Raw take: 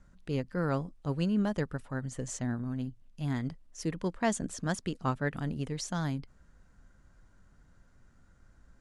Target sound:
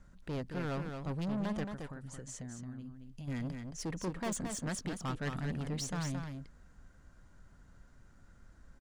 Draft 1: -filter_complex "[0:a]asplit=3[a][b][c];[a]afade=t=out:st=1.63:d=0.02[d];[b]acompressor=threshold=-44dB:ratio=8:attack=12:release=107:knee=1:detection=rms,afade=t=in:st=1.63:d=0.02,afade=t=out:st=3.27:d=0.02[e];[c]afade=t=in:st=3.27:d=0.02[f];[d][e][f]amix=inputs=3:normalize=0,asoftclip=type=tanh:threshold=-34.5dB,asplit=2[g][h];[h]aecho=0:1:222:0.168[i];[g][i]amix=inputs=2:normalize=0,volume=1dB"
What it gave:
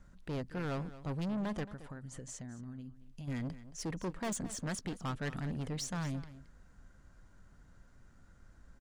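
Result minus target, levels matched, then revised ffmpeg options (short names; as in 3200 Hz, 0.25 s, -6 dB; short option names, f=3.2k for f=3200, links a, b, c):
echo-to-direct -9.5 dB
-filter_complex "[0:a]asplit=3[a][b][c];[a]afade=t=out:st=1.63:d=0.02[d];[b]acompressor=threshold=-44dB:ratio=8:attack=12:release=107:knee=1:detection=rms,afade=t=in:st=1.63:d=0.02,afade=t=out:st=3.27:d=0.02[e];[c]afade=t=in:st=3.27:d=0.02[f];[d][e][f]amix=inputs=3:normalize=0,asoftclip=type=tanh:threshold=-34.5dB,asplit=2[g][h];[h]aecho=0:1:222:0.501[i];[g][i]amix=inputs=2:normalize=0,volume=1dB"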